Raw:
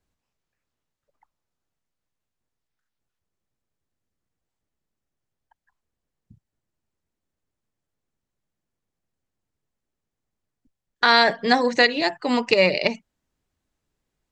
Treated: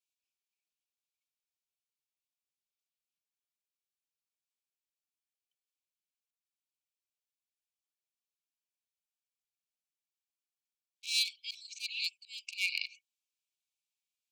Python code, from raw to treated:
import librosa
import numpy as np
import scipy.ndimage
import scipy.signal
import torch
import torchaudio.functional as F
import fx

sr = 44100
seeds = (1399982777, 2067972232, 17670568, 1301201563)

y = np.minimum(x, 2.0 * 10.0 ** (-13.0 / 20.0) - x)
y = fx.auto_swell(y, sr, attack_ms=166.0)
y = fx.brickwall_highpass(y, sr, low_hz=2200.0)
y = F.gain(torch.from_numpy(y), -6.0).numpy()